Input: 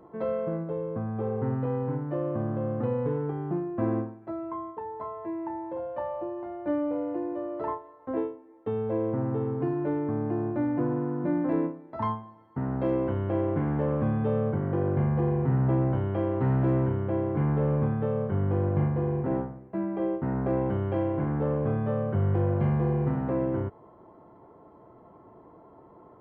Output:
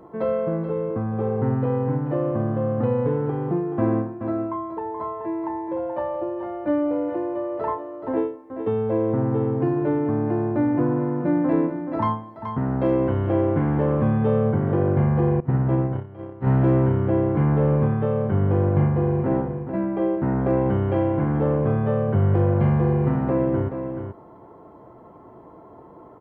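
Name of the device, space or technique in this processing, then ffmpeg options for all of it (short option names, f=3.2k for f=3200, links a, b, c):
ducked delay: -filter_complex "[0:a]asplit=3[a][b][c];[b]adelay=428,volume=-8dB[d];[c]apad=whole_len=1174528[e];[d][e]sidechaincompress=threshold=-33dB:ratio=4:attack=16:release=103[f];[a][f]amix=inputs=2:normalize=0,asettb=1/sr,asplit=3[g][h][i];[g]atrim=end=15.404[j];[h]atrim=start=15.4:end=16.47,asetpts=PTS-STARTPTS,afade=t=in:d=0.004:c=qsin,afade=t=out:st=1.066:d=0.004:c=qsin,agate=range=-19dB:threshold=-23dB:ratio=16:detection=peak[k];[i]atrim=start=16.466[l];[j][k]acrossfade=d=0.004:c1=hsin:c2=qsin[m];[m][l]acrossfade=d=0.004:c1=qsin:c2=hsin,volume=6dB"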